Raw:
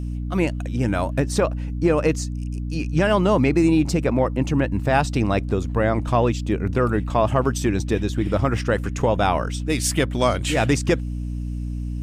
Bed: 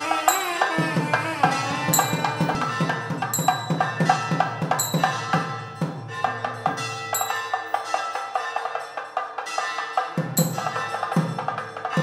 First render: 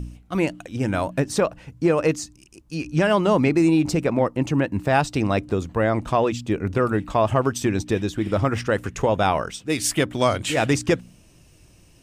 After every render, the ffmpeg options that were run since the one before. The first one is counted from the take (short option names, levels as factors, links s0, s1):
-af "bandreject=f=60:t=h:w=4,bandreject=f=120:t=h:w=4,bandreject=f=180:t=h:w=4,bandreject=f=240:t=h:w=4,bandreject=f=300:t=h:w=4"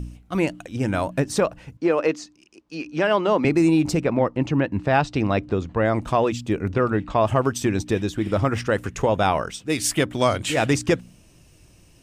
-filter_complex "[0:a]asettb=1/sr,asplit=3[s0][s1][s2];[s0]atrim=end=1.774[s3];[s1]atrim=start=1.77:end=3.45,asetpts=PTS-STARTPTS,afade=t=in:d=0.004:c=qsin,afade=t=out:st=1.676:d=0.004:c=qsin,acrossover=split=220 5600:gain=0.0891 1 0.126[s4][s5][s6];[s4][s5][s6]amix=inputs=3:normalize=0[s7];[s2]atrim=start=3.446[s8];[s3][s7]acrossfade=d=0.004:c1=hsin:c2=qsin[s9];[s9][s8]acrossfade=d=0.004:c1=qsin:c2=hsin,asettb=1/sr,asplit=3[s10][s11][s12];[s10]atrim=end=4.004[s13];[s11]atrim=start=4:end=5.85,asetpts=PTS-STARTPTS,afade=t=in:d=0.004:c=qsin,afade=t=out:st=1.846:d=0.004:c=qsin,lowpass=4600[s14];[s12]atrim=start=5.846[s15];[s13][s14]acrossfade=d=0.004:c1=hsin:c2=qsin[s16];[s16][s15]acrossfade=d=0.004:c1=qsin:c2=hsin,asettb=1/sr,asplit=3[s17][s18][s19];[s17]atrim=end=6.704[s20];[s18]atrim=start=6.7:end=7.21,asetpts=PTS-STARTPTS,afade=t=in:d=0.004:c=qsin,afade=t=out:st=0.506:d=0.004:c=qsin,lowpass=5000[s21];[s19]atrim=start=7.206[s22];[s20][s21]acrossfade=d=0.004:c1=hsin:c2=qsin[s23];[s23][s22]acrossfade=d=0.004:c1=qsin:c2=hsin"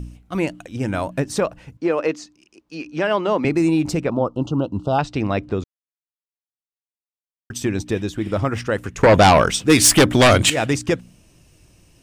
-filter_complex "[0:a]asettb=1/sr,asplit=3[s0][s1][s2];[s0]atrim=end=4.104[s3];[s1]atrim=start=4.1:end=4.99,asetpts=PTS-STARTPTS,afade=t=in:d=0.004:c=qsin,afade=t=out:st=0.886:d=0.004:c=qsin,asuperstop=centerf=2000:order=12:qfactor=1.4[s4];[s2]atrim=start=4.986[s5];[s3][s4]acrossfade=d=0.004:c1=hsin:c2=qsin[s6];[s6][s5]acrossfade=d=0.004:c1=qsin:c2=hsin,asettb=1/sr,asplit=3[s7][s8][s9];[s7]atrim=end=9.034[s10];[s8]atrim=start=9.03:end=10.5,asetpts=PTS-STARTPTS,afade=t=in:d=0.004:c=qsin,afade=t=out:st=1.466:d=0.004:c=qsin,aeval=exprs='0.473*sin(PI/2*2.82*val(0)/0.473)':c=same[s11];[s9]atrim=start=10.496[s12];[s10][s11]acrossfade=d=0.004:c1=hsin:c2=qsin[s13];[s13][s12]acrossfade=d=0.004:c1=qsin:c2=hsin,asplit=3[s14][s15][s16];[s14]atrim=end=5.64,asetpts=PTS-STARTPTS,afade=t=out:st=5.636:d=0.004:c=hsin[s17];[s15]atrim=start=5.64:end=7.5,asetpts=PTS-STARTPTS,volume=0[s18];[s16]atrim=start=7.5,asetpts=PTS-STARTPTS,afade=t=in:d=0.004:c=hsin[s19];[s17][s18][s19]concat=n=3:v=0:a=1"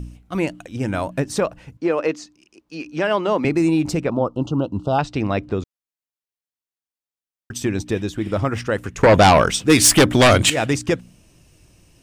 -filter_complex "[0:a]asettb=1/sr,asplit=3[s0][s1][s2];[s0]atrim=end=2.804[s3];[s1]atrim=start=2.8:end=3.47,asetpts=PTS-STARTPTS,afade=t=in:d=0.004:c=qsin,afade=t=out:st=0.666:d=0.004:c=qsin,highshelf=f=11000:g=8.5[s4];[s2]atrim=start=3.466[s5];[s3][s4]acrossfade=d=0.004:c1=hsin:c2=qsin[s6];[s6][s5]acrossfade=d=0.004:c1=qsin:c2=hsin"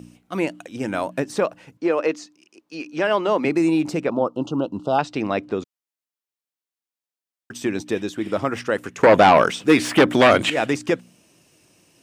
-filter_complex "[0:a]acrossover=split=3100[s0][s1];[s1]acompressor=threshold=0.02:ratio=4:attack=1:release=60[s2];[s0][s2]amix=inputs=2:normalize=0,highpass=220"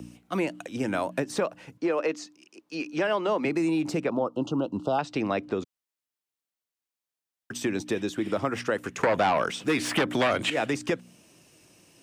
-filter_complex "[0:a]acrossover=split=230|490|3800[s0][s1][s2][s3];[s1]alimiter=limit=0.1:level=0:latency=1[s4];[s0][s4][s2][s3]amix=inputs=4:normalize=0,acompressor=threshold=0.0562:ratio=2.5"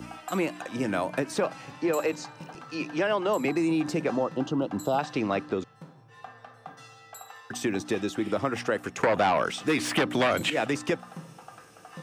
-filter_complex "[1:a]volume=0.0944[s0];[0:a][s0]amix=inputs=2:normalize=0"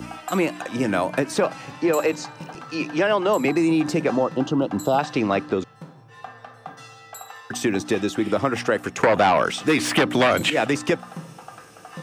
-af "volume=2"